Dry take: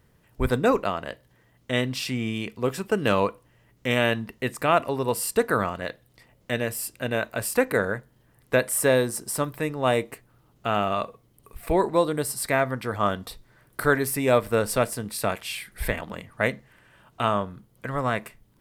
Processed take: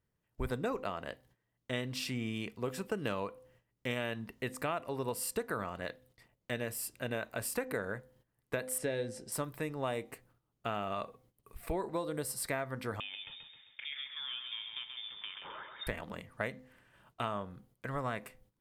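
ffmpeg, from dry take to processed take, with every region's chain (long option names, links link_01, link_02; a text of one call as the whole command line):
ffmpeg -i in.wav -filter_complex "[0:a]asettb=1/sr,asplit=3[link_01][link_02][link_03];[link_01]atrim=end=8.784[link_04];[link_02]atrim=start=8.78:end=9.32,asetpts=PTS-STARTPTS,afade=type=in:duration=0.004:curve=qsin,afade=type=out:start_time=0.536:duration=0.004:curve=qsin,lowpass=5000,equalizer=frequency=1100:width=2.4:gain=-13.5,asplit=2[link_05][link_06];[link_06]adelay=18,volume=-11dB[link_07];[link_05][link_07]amix=inputs=2:normalize=0,atrim=end_sample=23814[link_08];[link_03]atrim=start=9.316[link_09];[link_04][link_08]acrossfade=duration=0.004:curve1=hsin:curve2=qsin[link_10];[link_10][link_09]acrossfade=duration=0.004:curve1=qsin:curve2=hsin,asettb=1/sr,asplit=3[link_11][link_12][link_13];[link_11]atrim=end=13.004[link_14];[link_12]atrim=start=13:end=15.87,asetpts=PTS-STARTPTS,afade=type=in:duration=0.004:curve=qsin,afade=type=out:start_time=2.866:duration=0.004:curve=qsin,acompressor=threshold=-32dB:ratio=6:attack=3.2:release=140:knee=1:detection=peak,aecho=1:1:132|264|396|528|660|792:0.531|0.25|0.117|0.0551|0.0259|0.0122,atrim=end_sample=126567,lowpass=frequency=3100:width_type=q:width=0.5098,lowpass=frequency=3100:width_type=q:width=0.6013,lowpass=frequency=3100:width_type=q:width=0.9,lowpass=frequency=3100:width_type=q:width=2.563,afreqshift=-3700[link_15];[link_13]atrim=start=15.866[link_16];[link_14][link_15]acrossfade=duration=0.004:curve1=hsin:curve2=qsin[link_17];[link_17][link_16]acrossfade=duration=0.004:curve1=qsin:curve2=hsin,bandreject=frequency=256.2:width_type=h:width=4,bandreject=frequency=512.4:width_type=h:width=4,bandreject=frequency=768.6:width_type=h:width=4,agate=range=-14dB:threshold=-56dB:ratio=16:detection=peak,acompressor=threshold=-24dB:ratio=6,volume=-7.5dB" out.wav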